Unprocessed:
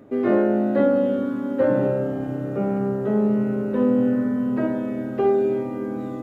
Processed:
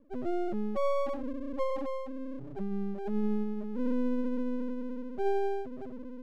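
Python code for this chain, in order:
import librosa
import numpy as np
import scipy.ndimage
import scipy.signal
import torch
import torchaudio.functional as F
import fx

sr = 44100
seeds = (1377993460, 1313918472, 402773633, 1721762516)

y = scipy.signal.sosfilt(scipy.signal.butter(2, 1000.0, 'lowpass', fs=sr, output='sos'), x)
y = fx.echo_feedback(y, sr, ms=136, feedback_pct=30, wet_db=-20.0)
y = fx.spec_topn(y, sr, count=1)
y = np.maximum(y, 0.0)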